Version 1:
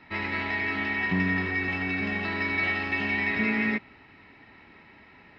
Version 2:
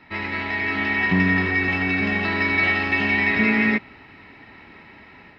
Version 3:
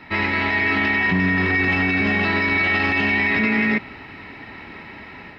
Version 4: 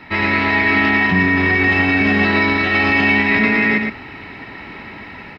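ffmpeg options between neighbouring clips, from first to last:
ffmpeg -i in.wav -af "dynaudnorm=framelen=480:gausssize=3:maxgain=4.5dB,volume=2.5dB" out.wav
ffmpeg -i in.wav -af "alimiter=limit=-19dB:level=0:latency=1:release=24,volume=7.5dB" out.wav
ffmpeg -i in.wav -af "aecho=1:1:116:0.596,volume=3dB" out.wav

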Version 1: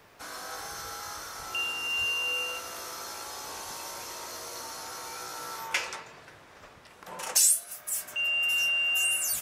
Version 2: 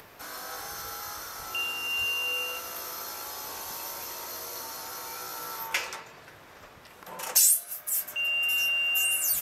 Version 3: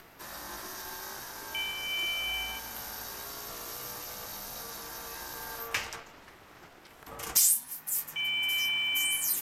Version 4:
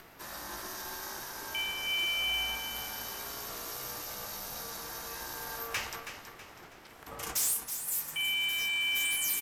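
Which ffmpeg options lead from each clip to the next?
ffmpeg -i in.wav -af "acompressor=mode=upward:threshold=-45dB:ratio=2.5,equalizer=frequency=13000:width=6.3:gain=15" out.wav
ffmpeg -i in.wav -af "acrusher=bits=9:mode=log:mix=0:aa=0.000001,afreqshift=-94,aeval=exprs='val(0)*sin(2*PI*350*n/s)':channel_layout=same" out.wav
ffmpeg -i in.wav -filter_complex "[0:a]volume=26.5dB,asoftclip=hard,volume=-26.5dB,asplit=2[link_01][link_02];[link_02]aecho=0:1:324|648|972|1296:0.316|0.126|0.0506|0.0202[link_03];[link_01][link_03]amix=inputs=2:normalize=0" out.wav

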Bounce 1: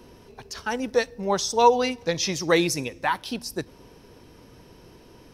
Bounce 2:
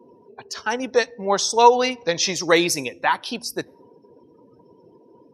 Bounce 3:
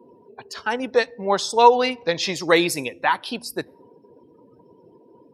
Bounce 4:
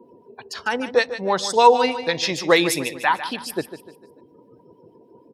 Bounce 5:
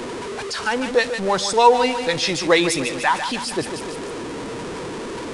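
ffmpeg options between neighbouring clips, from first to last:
ffmpeg -i in.wav -af "highpass=frequency=350:poles=1,afftdn=noise_reduction=32:noise_floor=-49,volume=5dB" out.wav
ffmpeg -i in.wav -af "equalizer=frequency=5900:width=5:gain=-12.5" out.wav
ffmpeg -i in.wav -filter_complex "[0:a]acrossover=split=1100[link_01][link_02];[link_01]aeval=exprs='val(0)*(1-0.5/2+0.5/2*cos(2*PI*6.4*n/s))':channel_layout=same[link_03];[link_02]aeval=exprs='val(0)*(1-0.5/2-0.5/2*cos(2*PI*6.4*n/s))':channel_layout=same[link_04];[link_03][link_04]amix=inputs=2:normalize=0,asplit=2[link_05][link_06];[link_06]aecho=0:1:149|298|447|596:0.251|0.1|0.0402|0.0161[link_07];[link_05][link_07]amix=inputs=2:normalize=0,volume=3dB" out.wav
ffmpeg -i in.wav -af "aeval=exprs='val(0)+0.5*0.0668*sgn(val(0))':channel_layout=same,aresample=22050,aresample=44100,volume=-1dB" out.wav

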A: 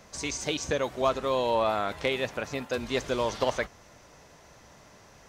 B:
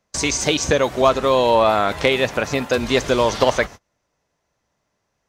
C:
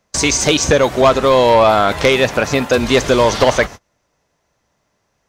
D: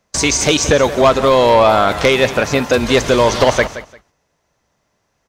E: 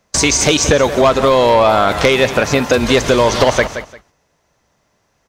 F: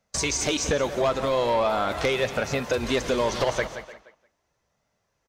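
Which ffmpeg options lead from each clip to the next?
ffmpeg -i in.wav -filter_complex "[0:a]agate=range=-33dB:threshold=-42dB:ratio=16:detection=peak,asplit=2[link_01][link_02];[link_02]acompressor=threshold=-33dB:ratio=6,volume=-1.5dB[link_03];[link_01][link_03]amix=inputs=2:normalize=0,volume=8.5dB" out.wav
ffmpeg -i in.wav -af "aeval=exprs='0.75*sin(PI/2*1.58*val(0)/0.75)':channel_layout=same,volume=-1.5dB" out.wav
ffmpeg -i in.wav -af "aecho=1:1:173|346:0.2|0.0419" out.wav
ffmpeg -i in.wav -af "acompressor=threshold=-15dB:ratio=2,volume=4dB" out.wav
ffmpeg -i in.wav -filter_complex "[0:a]flanger=delay=1.4:depth=4.8:regen=-53:speed=0.41:shape=sinusoidal,asplit=2[link_01][link_02];[link_02]adelay=300,highpass=300,lowpass=3400,asoftclip=type=hard:threshold=-13.5dB,volume=-15dB[link_03];[link_01][link_03]amix=inputs=2:normalize=0,volume=-8.5dB" out.wav

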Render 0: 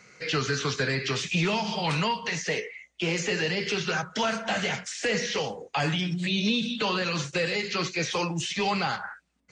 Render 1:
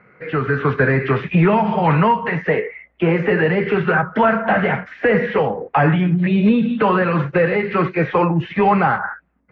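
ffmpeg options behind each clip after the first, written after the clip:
ffmpeg -i in.wav -af "lowpass=frequency=1800:width=0.5412,lowpass=frequency=1800:width=1.3066,dynaudnorm=framelen=210:gausssize=5:maxgain=7dB,volume=6dB" out.wav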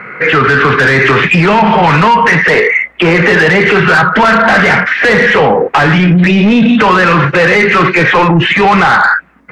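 ffmpeg -i in.wav -filter_complex "[0:a]equalizer=frequency=640:width=0.9:gain=-7,asplit=2[link_01][link_02];[link_02]highpass=frequency=720:poles=1,volume=20dB,asoftclip=type=tanh:threshold=-6.5dB[link_03];[link_01][link_03]amix=inputs=2:normalize=0,lowpass=frequency=3000:poles=1,volume=-6dB,alimiter=level_in=16.5dB:limit=-1dB:release=50:level=0:latency=1,volume=-1dB" out.wav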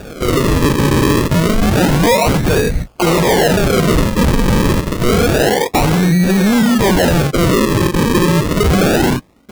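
ffmpeg -i in.wav -af "acrusher=samples=42:mix=1:aa=0.000001:lfo=1:lforange=42:lforate=0.28,volume=-4.5dB" out.wav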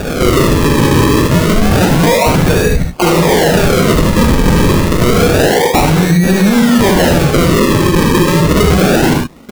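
ffmpeg -i in.wav -filter_complex "[0:a]acompressor=threshold=-21dB:ratio=3,asplit=2[link_01][link_02];[link_02]aecho=0:1:44|63|75:0.316|0.398|0.501[link_03];[link_01][link_03]amix=inputs=2:normalize=0,alimiter=level_in=13.5dB:limit=-1dB:release=50:level=0:latency=1,volume=-1.5dB" out.wav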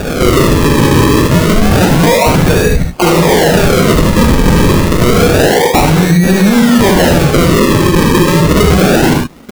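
ffmpeg -i in.wav -af "acrusher=bits=7:mix=0:aa=0.000001,volume=1.5dB" out.wav

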